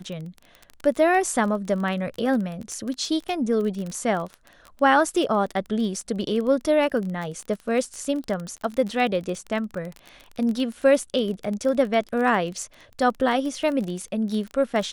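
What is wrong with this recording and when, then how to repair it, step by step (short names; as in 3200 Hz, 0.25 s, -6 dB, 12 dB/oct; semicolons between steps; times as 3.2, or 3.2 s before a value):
crackle 22/s -28 dBFS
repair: de-click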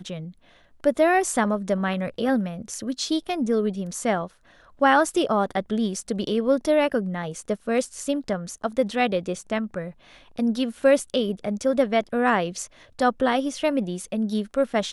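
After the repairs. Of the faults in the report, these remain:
none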